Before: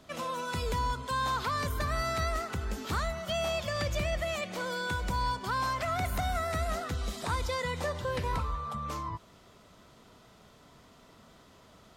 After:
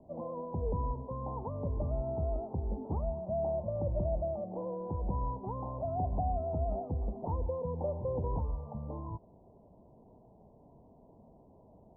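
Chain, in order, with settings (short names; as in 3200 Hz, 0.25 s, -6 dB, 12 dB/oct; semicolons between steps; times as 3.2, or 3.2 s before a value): steep low-pass 920 Hz 72 dB/oct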